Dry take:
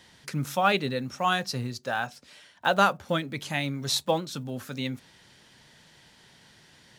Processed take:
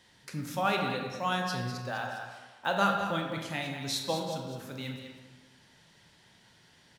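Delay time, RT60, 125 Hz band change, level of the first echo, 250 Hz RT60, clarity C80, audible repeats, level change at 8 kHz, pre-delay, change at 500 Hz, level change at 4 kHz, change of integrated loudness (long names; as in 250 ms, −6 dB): 202 ms, 1.4 s, −4.0 dB, −9.0 dB, 1.2 s, 4.0 dB, 1, −5.5 dB, 23 ms, −4.5 dB, −5.0 dB, −4.5 dB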